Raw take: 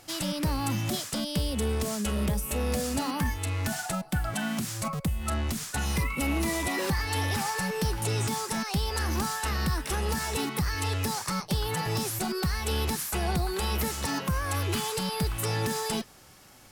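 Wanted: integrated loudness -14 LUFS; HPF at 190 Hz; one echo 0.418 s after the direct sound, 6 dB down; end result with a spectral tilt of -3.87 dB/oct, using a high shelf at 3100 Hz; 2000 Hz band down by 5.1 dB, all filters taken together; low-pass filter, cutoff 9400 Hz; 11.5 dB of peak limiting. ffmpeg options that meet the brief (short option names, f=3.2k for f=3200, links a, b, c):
-af "highpass=190,lowpass=9.4k,equalizer=f=2k:t=o:g=-5,highshelf=f=3.1k:g=-4,alimiter=level_in=6dB:limit=-24dB:level=0:latency=1,volume=-6dB,aecho=1:1:418:0.501,volume=23.5dB"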